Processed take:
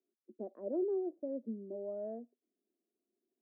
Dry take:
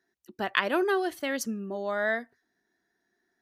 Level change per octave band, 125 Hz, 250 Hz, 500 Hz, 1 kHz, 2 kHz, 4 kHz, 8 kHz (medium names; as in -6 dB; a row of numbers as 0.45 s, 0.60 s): no reading, -7.5 dB, -7.5 dB, -23.5 dB, under -40 dB, under -40 dB, under -40 dB